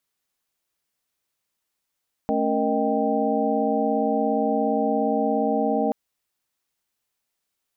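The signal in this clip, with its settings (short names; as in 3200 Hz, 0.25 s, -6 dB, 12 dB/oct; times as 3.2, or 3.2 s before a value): chord A3/C#4/A#4/D#5/G5 sine, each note -26 dBFS 3.63 s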